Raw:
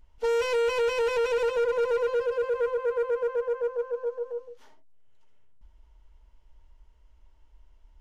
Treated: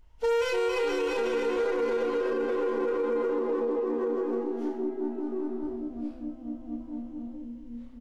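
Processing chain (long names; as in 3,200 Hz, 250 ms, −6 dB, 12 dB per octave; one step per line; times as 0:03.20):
0:03.31–0:03.99: Chebyshev band-pass filter 110–1,200 Hz, order 5
delay with pitch and tempo change per echo 237 ms, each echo −4 semitones, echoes 3, each echo −6 dB
reverse bouncing-ball delay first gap 30 ms, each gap 1.4×, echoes 5
brickwall limiter −21 dBFS, peak gain reduction 9.5 dB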